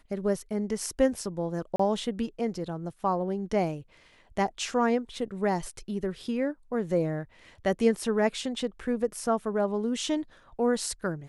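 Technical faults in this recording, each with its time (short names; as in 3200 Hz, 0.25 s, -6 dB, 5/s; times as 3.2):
1.76–1.79 gap 34 ms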